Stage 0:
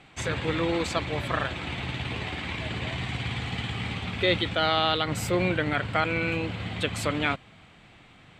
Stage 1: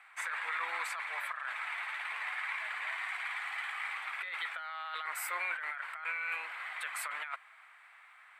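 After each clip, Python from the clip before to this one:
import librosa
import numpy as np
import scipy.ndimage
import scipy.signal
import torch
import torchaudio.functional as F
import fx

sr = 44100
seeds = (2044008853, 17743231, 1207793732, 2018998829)

y = scipy.signal.sosfilt(scipy.signal.butter(4, 1100.0, 'highpass', fs=sr, output='sos'), x)
y = fx.band_shelf(y, sr, hz=4500.0, db=-15.5, octaves=1.7)
y = fx.over_compress(y, sr, threshold_db=-37.0, ratio=-1.0)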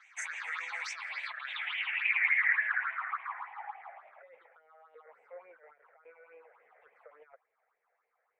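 y = fx.filter_sweep_lowpass(x, sr, from_hz=6300.0, to_hz=460.0, start_s=0.73, end_s=4.53, q=7.5)
y = fx.peak_eq(y, sr, hz=290.0, db=-9.5, octaves=1.4)
y = fx.phaser_stages(y, sr, stages=6, low_hz=260.0, high_hz=1300.0, hz=3.5, feedback_pct=30)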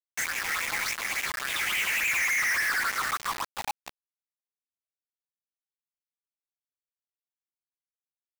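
y = fx.quant_companded(x, sr, bits=2)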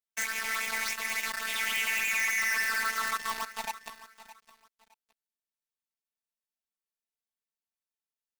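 y = fx.robotise(x, sr, hz=223.0)
y = fx.echo_feedback(y, sr, ms=614, feedback_pct=25, wet_db=-16.0)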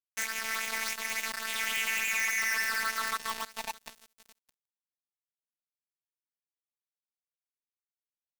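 y = np.sign(x) * np.maximum(np.abs(x) - 10.0 ** (-42.0 / 20.0), 0.0)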